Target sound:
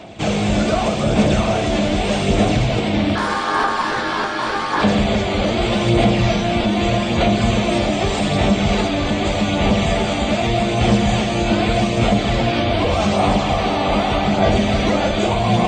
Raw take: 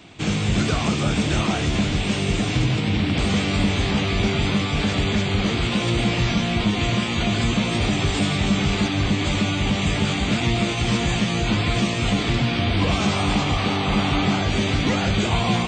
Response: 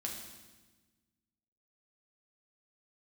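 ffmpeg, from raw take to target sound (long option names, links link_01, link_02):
-filter_complex "[0:a]equalizer=frequency=620:width=1.5:gain=12.5,alimiter=limit=-11dB:level=0:latency=1:release=397,aphaser=in_gain=1:out_gain=1:delay=3.5:decay=0.36:speed=0.83:type=sinusoidal,asettb=1/sr,asplit=3[link_01][link_02][link_03];[link_01]atrim=end=3.154[link_04];[link_02]atrim=start=3.15:end=4.82,asetpts=PTS-STARTPTS,afade=type=in:duration=0.004:curve=qsin,afade=type=out:start_time=1.666:duration=0.004:curve=qsin,aeval=exprs='val(0)*sin(2*PI*1000*n/s)':channel_layout=same[link_05];[link_03]atrim=start=4.816[link_06];[link_04][link_05]acrossfade=duration=0.004:curve1=hsin:curve2=qsin[link_07];[link_07][link_06]acrossfade=duration=0.004:curve1=qsin:curve2=hsin,asplit=2[link_08][link_09];[1:a]atrim=start_sample=2205,afade=type=out:start_time=0.34:duration=0.01,atrim=end_sample=15435[link_10];[link_09][link_10]afir=irnorm=-1:irlink=0,volume=0.5dB[link_11];[link_08][link_11]amix=inputs=2:normalize=0,volume=-3dB"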